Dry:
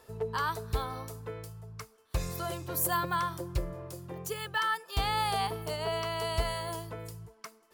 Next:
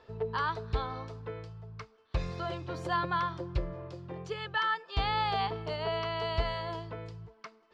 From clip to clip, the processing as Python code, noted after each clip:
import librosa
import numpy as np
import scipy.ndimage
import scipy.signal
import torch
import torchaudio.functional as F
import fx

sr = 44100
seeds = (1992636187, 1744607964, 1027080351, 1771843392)

y = scipy.signal.sosfilt(scipy.signal.butter(4, 4400.0, 'lowpass', fs=sr, output='sos'), x)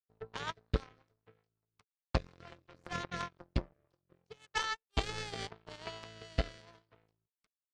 y = fx.power_curve(x, sr, exponent=3.0)
y = fx.rotary_switch(y, sr, hz=5.5, then_hz=0.85, switch_at_s=3.34)
y = y * librosa.db_to_amplitude(9.0)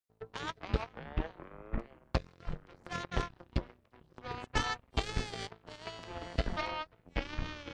y = fx.echo_pitch(x, sr, ms=130, semitones=-6, count=3, db_per_echo=-3.0)